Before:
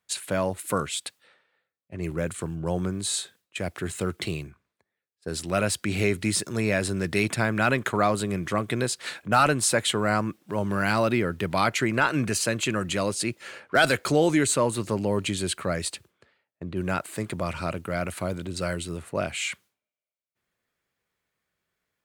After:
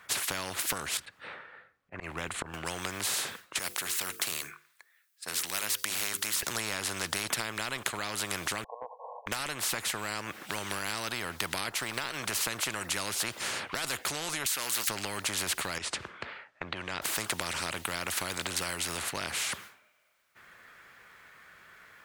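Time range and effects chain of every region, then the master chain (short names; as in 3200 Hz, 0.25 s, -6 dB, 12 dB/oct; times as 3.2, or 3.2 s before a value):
0.97–2.54 tilt -3 dB/oct + auto swell 0.217 s + upward expander, over -32 dBFS
3.59–6.43 differentiator + notches 50/100/150/200/250/300/350/400/450/500 Hz
8.64–9.27 brick-wall FIR band-pass 460–1100 Hz + comb 2.4 ms, depth 37%
11.75–12.18 G.711 law mismatch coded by A + bell 6800 Hz -6.5 dB 0.23 oct
14.46–14.89 HPF 1100 Hz 6 dB/oct + tilt +4.5 dB/oct
15.78–17.02 compressor 2:1, threshold -44 dBFS + air absorption 85 m
whole clip: bell 1500 Hz +14 dB 1.8 oct; compressor 6:1, threshold -24 dBFS; spectral compressor 4:1; gain +2 dB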